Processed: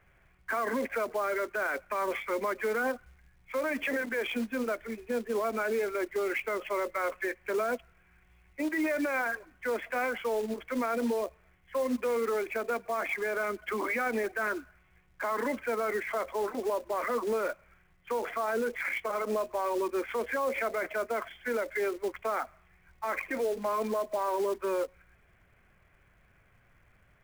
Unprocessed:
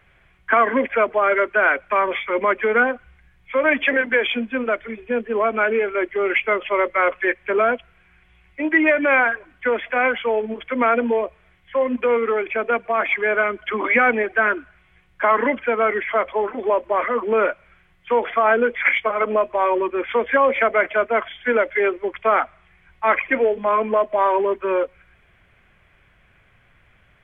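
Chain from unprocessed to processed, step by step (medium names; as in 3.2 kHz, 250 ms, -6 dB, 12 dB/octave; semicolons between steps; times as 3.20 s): Bessel low-pass 1.9 kHz, order 2; peak limiter -17 dBFS, peak gain reduction 10 dB; short-mantissa float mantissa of 2-bit; trim -6 dB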